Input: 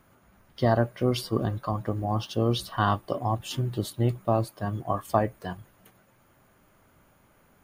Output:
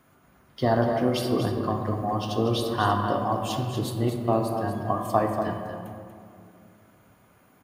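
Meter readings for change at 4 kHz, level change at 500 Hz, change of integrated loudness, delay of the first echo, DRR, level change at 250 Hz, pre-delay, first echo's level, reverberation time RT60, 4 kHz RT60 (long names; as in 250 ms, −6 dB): +1.5 dB, +2.5 dB, +2.0 dB, 239 ms, 1.0 dB, +3.0 dB, 3 ms, −8.0 dB, 2.4 s, 1.1 s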